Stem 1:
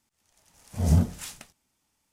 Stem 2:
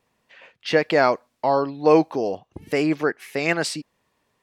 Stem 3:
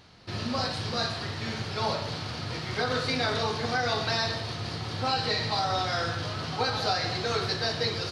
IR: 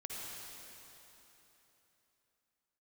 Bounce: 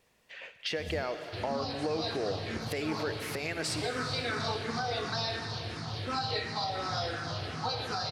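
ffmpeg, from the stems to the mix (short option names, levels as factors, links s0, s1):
-filter_complex "[0:a]tremolo=f=1.1:d=0.92,volume=0.178[s0];[1:a]equalizer=f=125:t=o:w=1:g=-4,equalizer=f=250:t=o:w=1:g=-6,equalizer=f=1000:t=o:w=1:g=-7,acompressor=threshold=0.0282:ratio=5,volume=1.26,asplit=2[s1][s2];[s2]volume=0.447[s3];[2:a]asplit=2[s4][s5];[s5]afreqshift=-2.8[s6];[s4][s6]amix=inputs=2:normalize=1,adelay=1050,volume=0.631,asplit=2[s7][s8];[s8]volume=0.562[s9];[3:a]atrim=start_sample=2205[s10];[s3][s9]amix=inputs=2:normalize=0[s11];[s11][s10]afir=irnorm=-1:irlink=0[s12];[s0][s1][s7][s12]amix=inputs=4:normalize=0,alimiter=limit=0.0794:level=0:latency=1:release=263"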